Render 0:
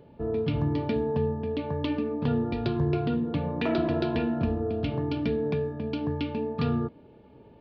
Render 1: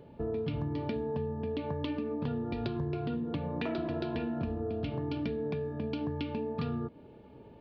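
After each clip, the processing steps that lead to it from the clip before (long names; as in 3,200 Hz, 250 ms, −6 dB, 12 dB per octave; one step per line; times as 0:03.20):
downward compressor, threshold −31 dBFS, peak gain reduction 9 dB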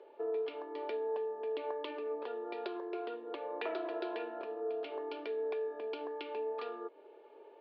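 elliptic high-pass filter 380 Hz, stop band 60 dB
high-frequency loss of the air 170 metres
level +1 dB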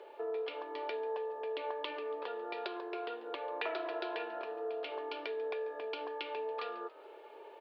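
high-pass filter 950 Hz 6 dB per octave
in parallel at +2.5 dB: downward compressor, threshold −54 dBFS, peak gain reduction 15 dB
on the sum: echo with shifted repeats 141 ms, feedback 47%, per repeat +65 Hz, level −19.5 dB
level +3 dB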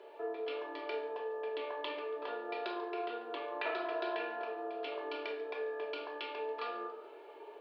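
rectangular room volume 900 cubic metres, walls furnished, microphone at 3 metres
level −3.5 dB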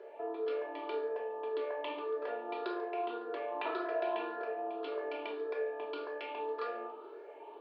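rippled gain that drifts along the octave scale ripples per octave 0.56, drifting +1.8 Hz, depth 8 dB
high-shelf EQ 2,200 Hz −10.5 dB
level +2 dB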